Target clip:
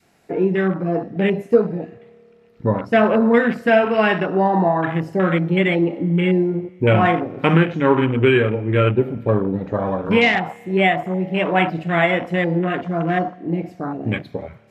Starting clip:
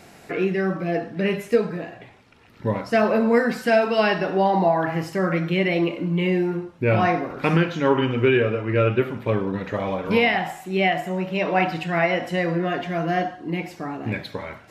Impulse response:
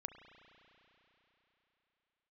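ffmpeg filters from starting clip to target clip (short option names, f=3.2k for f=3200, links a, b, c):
-filter_complex "[0:a]adynamicequalizer=threshold=0.0224:dfrequency=620:dqfactor=1.2:tfrequency=620:tqfactor=1.2:attack=5:release=100:ratio=0.375:range=2.5:mode=cutabove:tftype=bell,afwtdn=0.0355,asplit=2[a][b];[1:a]atrim=start_sample=2205,asetrate=52920,aresample=44100[c];[b][c]afir=irnorm=-1:irlink=0,volume=-12dB[d];[a][d]amix=inputs=2:normalize=0,volume=4dB"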